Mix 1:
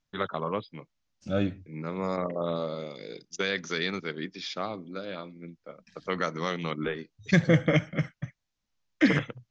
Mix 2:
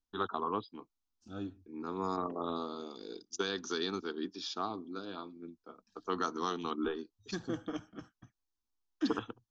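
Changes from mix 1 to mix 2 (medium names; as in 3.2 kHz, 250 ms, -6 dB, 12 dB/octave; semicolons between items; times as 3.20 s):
second voice -9.5 dB; master: add static phaser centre 560 Hz, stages 6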